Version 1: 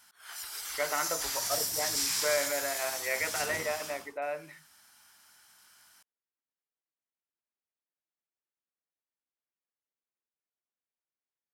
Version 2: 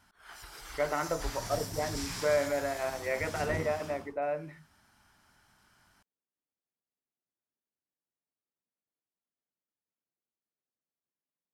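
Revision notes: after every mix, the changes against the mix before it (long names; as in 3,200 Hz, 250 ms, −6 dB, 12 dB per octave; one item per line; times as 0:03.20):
master: add spectral tilt −4 dB per octave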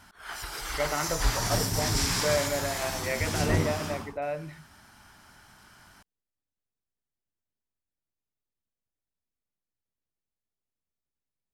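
speech: remove band-pass filter 200–2,100 Hz
background +11.0 dB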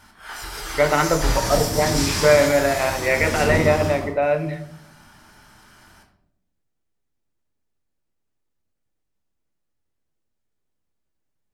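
speech +11.0 dB
reverb: on, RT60 0.80 s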